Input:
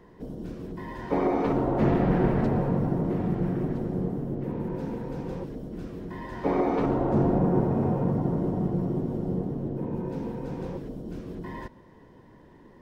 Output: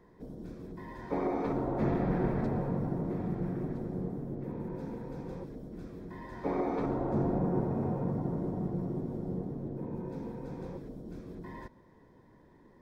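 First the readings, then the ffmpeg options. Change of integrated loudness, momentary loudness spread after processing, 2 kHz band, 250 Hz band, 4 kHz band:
−7.0 dB, 14 LU, −7.5 dB, −7.0 dB, can't be measured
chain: -af "bandreject=frequency=2900:width=5.1,volume=-7dB"

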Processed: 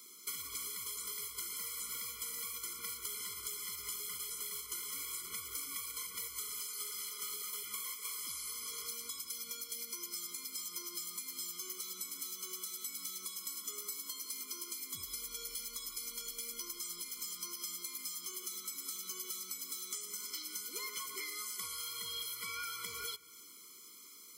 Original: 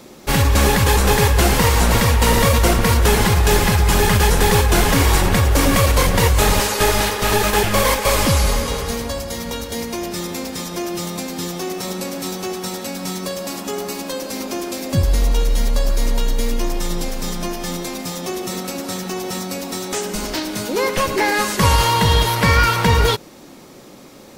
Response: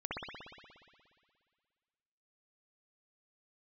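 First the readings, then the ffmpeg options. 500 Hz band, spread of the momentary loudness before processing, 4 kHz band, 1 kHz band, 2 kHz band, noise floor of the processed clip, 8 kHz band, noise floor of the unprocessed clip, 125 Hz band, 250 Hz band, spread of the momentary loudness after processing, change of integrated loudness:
−38.0 dB, 11 LU, −20.0 dB, −32.5 dB, −27.5 dB, −55 dBFS, −15.0 dB, −41 dBFS, below −40 dB, −38.5 dB, 2 LU, −21.5 dB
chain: -filter_complex "[0:a]aderivative,acompressor=threshold=-34dB:ratio=20,asplit=2[link_01][link_02];[1:a]atrim=start_sample=2205,lowpass=6100,adelay=102[link_03];[link_02][link_03]afir=irnorm=-1:irlink=0,volume=-23.5dB[link_04];[link_01][link_04]amix=inputs=2:normalize=0,afftfilt=real='re*eq(mod(floor(b*sr/1024/490),2),0)':imag='im*eq(mod(floor(b*sr/1024/490),2),0)':win_size=1024:overlap=0.75,volume=-1dB"

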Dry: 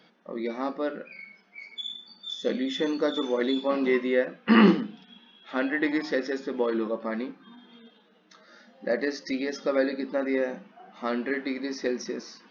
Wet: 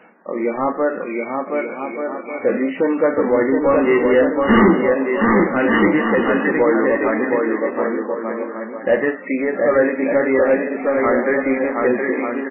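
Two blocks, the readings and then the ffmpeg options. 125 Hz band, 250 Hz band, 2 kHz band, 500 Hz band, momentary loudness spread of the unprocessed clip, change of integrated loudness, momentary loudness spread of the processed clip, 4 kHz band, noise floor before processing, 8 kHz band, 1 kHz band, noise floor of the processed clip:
+7.5 dB, +9.0 dB, +11.5 dB, +12.5 dB, 14 LU, +9.5 dB, 9 LU, −4.5 dB, −60 dBFS, can't be measured, +13.5 dB, −32 dBFS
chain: -filter_complex "[0:a]aecho=1:1:720|1188|1492|1690|1818:0.631|0.398|0.251|0.158|0.1,asplit=2[link_01][link_02];[link_02]highpass=frequency=720:poles=1,volume=21dB,asoftclip=type=tanh:threshold=-5dB[link_03];[link_01][link_03]amix=inputs=2:normalize=0,lowpass=frequency=1100:poles=1,volume=-6dB,volume=3dB" -ar 8000 -c:a libmp3lame -b:a 8k

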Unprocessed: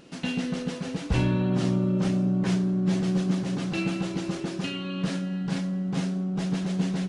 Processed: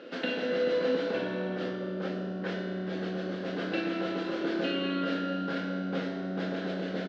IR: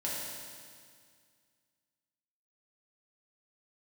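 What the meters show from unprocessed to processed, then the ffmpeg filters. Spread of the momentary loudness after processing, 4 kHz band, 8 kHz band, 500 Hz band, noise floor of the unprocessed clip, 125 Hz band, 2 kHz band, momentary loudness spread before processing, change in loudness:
6 LU, −1.5 dB, below −15 dB, +3.5 dB, −36 dBFS, −12.5 dB, +1.5 dB, 7 LU, −4.5 dB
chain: -filter_complex "[0:a]acompressor=threshold=-31dB:ratio=6,highpass=frequency=260:width=0.5412,highpass=frequency=260:width=1.3066,equalizer=frequency=510:width_type=q:width=4:gain=10,equalizer=frequency=940:width_type=q:width=4:gain=-7,equalizer=frequency=1500:width_type=q:width=4:gain=7,equalizer=frequency=2500:width_type=q:width=4:gain=-3,lowpass=frequency=4000:width=0.5412,lowpass=frequency=4000:width=1.3066,asplit=2[link_01][link_02];[link_02]adelay=23,volume=-12dB[link_03];[link_01][link_03]amix=inputs=2:normalize=0,asplit=3[link_04][link_05][link_06];[link_05]adelay=191,afreqshift=-80,volume=-22.5dB[link_07];[link_06]adelay=382,afreqshift=-160,volume=-31.9dB[link_08];[link_04][link_07][link_08]amix=inputs=3:normalize=0,asplit=2[link_09][link_10];[1:a]atrim=start_sample=2205,adelay=26[link_11];[link_10][link_11]afir=irnorm=-1:irlink=0,volume=-6.5dB[link_12];[link_09][link_12]amix=inputs=2:normalize=0,volume=4dB"

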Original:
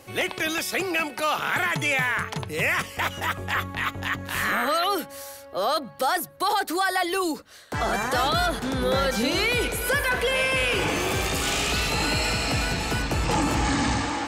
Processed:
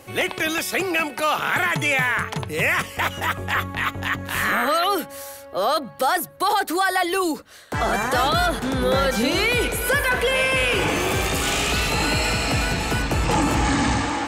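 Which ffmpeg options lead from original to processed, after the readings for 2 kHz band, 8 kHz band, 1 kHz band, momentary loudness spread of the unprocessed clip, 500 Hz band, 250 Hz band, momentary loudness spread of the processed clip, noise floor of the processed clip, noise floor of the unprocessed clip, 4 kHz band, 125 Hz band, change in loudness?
+3.5 dB, +2.5 dB, +3.5 dB, 6 LU, +3.5 dB, +3.5 dB, 6 LU, −41 dBFS, −44 dBFS, +2.0 dB, +3.5 dB, +3.0 dB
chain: -af "equalizer=frequency=4900:width_type=o:width=0.81:gain=-3,volume=3.5dB"

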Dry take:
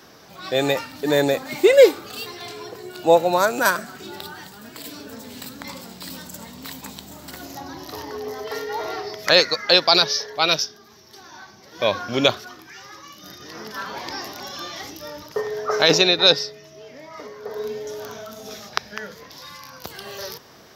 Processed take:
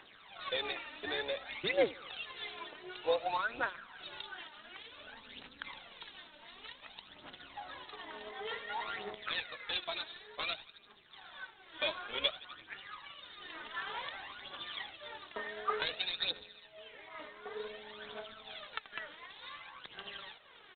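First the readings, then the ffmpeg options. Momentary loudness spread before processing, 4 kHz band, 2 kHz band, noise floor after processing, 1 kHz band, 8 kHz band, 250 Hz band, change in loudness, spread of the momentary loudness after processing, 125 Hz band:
22 LU, −17.5 dB, −13.5 dB, −59 dBFS, −15.0 dB, below −40 dB, −23.0 dB, −20.0 dB, 16 LU, −24.5 dB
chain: -filter_complex "[0:a]aderivative,aecho=1:1:83|166|249|332:0.1|0.056|0.0314|0.0176,asplit=2[link_01][link_02];[link_02]acrusher=bits=3:mode=log:mix=0:aa=0.000001,volume=-7dB[link_03];[link_01][link_03]amix=inputs=2:normalize=0,tremolo=f=210:d=0.621,acompressor=threshold=-40dB:ratio=2.5,highshelf=frequency=2300:gain=-5.5,aphaser=in_gain=1:out_gain=1:delay=3.4:decay=0.65:speed=0.55:type=triangular,volume=6.5dB" -ar 8000 -c:a adpcm_g726 -b:a 24k

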